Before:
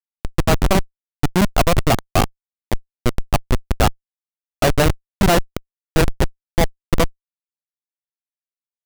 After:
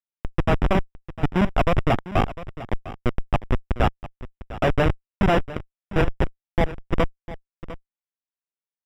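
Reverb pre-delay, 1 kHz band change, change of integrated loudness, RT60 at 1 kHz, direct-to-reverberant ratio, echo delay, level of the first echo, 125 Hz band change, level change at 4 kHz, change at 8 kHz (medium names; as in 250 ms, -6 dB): no reverb, -4.0 dB, -4.5 dB, no reverb, no reverb, 702 ms, -15.5 dB, -4.0 dB, -10.0 dB, under -20 dB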